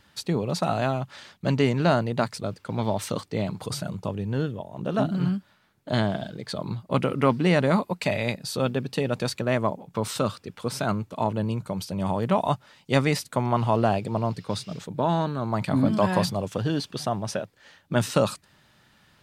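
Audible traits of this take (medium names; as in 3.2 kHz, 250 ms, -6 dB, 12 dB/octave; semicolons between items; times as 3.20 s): noise floor -62 dBFS; spectral tilt -5.5 dB/octave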